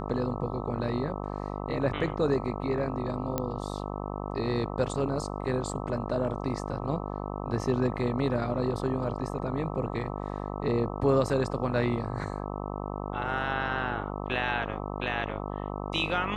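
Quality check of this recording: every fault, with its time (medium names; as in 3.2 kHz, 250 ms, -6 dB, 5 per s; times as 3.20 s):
buzz 50 Hz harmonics 26 -35 dBFS
3.38 s: pop -14 dBFS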